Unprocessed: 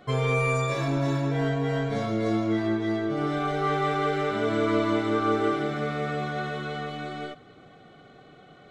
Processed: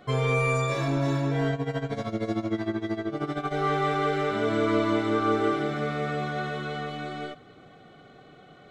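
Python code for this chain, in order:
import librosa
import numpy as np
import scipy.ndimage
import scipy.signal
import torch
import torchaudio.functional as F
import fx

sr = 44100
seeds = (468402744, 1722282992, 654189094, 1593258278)

y = fx.tremolo(x, sr, hz=13.0, depth=0.79, at=(1.51, 3.51), fade=0.02)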